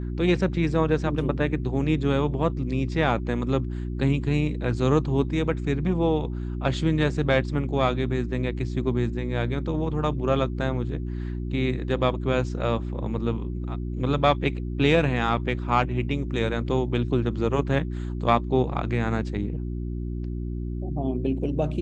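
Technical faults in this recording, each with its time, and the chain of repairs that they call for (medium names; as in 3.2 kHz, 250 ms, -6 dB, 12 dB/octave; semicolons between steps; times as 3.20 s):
hum 60 Hz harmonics 6 -30 dBFS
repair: de-hum 60 Hz, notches 6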